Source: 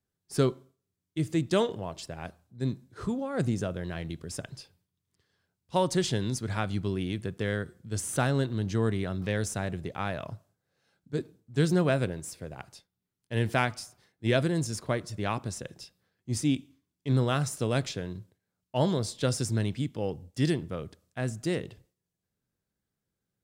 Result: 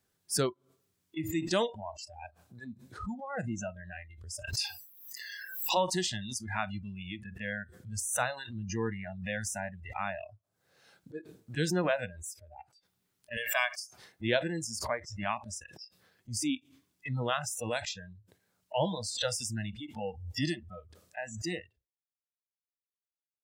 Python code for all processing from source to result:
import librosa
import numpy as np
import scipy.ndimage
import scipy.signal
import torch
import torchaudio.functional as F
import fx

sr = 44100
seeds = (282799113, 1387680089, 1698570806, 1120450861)

y = fx.chain(x, sr, fx.highpass(hz=250.0, slope=12),
    fx.env_flatten(amount_pct=70), at=(4.53, 5.77))
y = fx.chain(y, sr, fx.highpass(hz=1000.0, slope=6),
    fx.comb(ms=1.8, depth=0.74), at=(13.37, 13.8))
y = fx.noise_reduce_blind(y, sr, reduce_db=29)
y = fx.low_shelf(y, sr, hz=310.0, db=-9.0)
y = fx.pre_swell(y, sr, db_per_s=71.0)